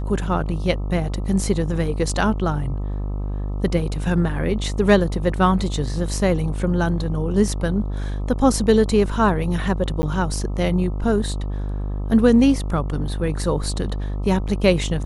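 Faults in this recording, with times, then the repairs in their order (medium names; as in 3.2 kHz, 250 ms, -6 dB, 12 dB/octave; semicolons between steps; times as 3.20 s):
buzz 50 Hz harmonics 26 -25 dBFS
10.02–10.03 s: dropout 10 ms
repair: de-hum 50 Hz, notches 26; interpolate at 10.02 s, 10 ms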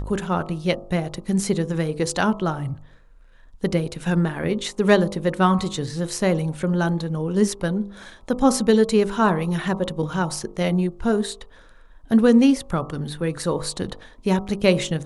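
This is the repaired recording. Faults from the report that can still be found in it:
nothing left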